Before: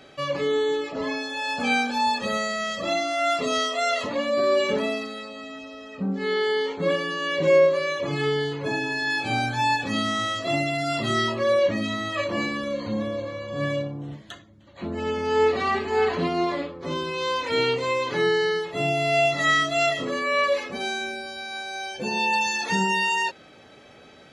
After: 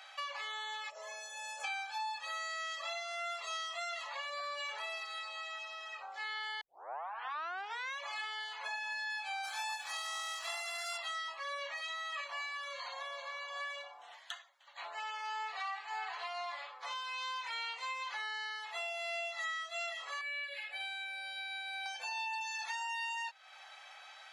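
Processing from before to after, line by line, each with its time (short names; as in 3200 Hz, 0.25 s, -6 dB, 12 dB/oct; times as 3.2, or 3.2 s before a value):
0.9–1.64 spectral gain 650–5200 Hz -15 dB
6.61 tape start 1.39 s
9.43–10.96 spectral contrast lowered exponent 0.55
20.21–21.86 fixed phaser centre 2600 Hz, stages 4
whole clip: elliptic high-pass 770 Hz, stop band 70 dB; compressor 5:1, threshold -39 dBFS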